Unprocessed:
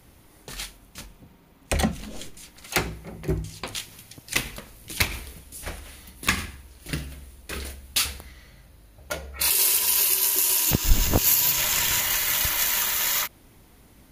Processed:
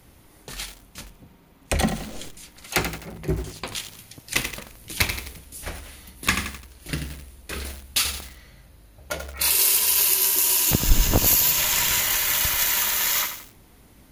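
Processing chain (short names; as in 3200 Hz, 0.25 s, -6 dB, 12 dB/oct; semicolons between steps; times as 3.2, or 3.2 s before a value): lo-fi delay 86 ms, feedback 55%, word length 6-bit, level -7.5 dB; gain +1 dB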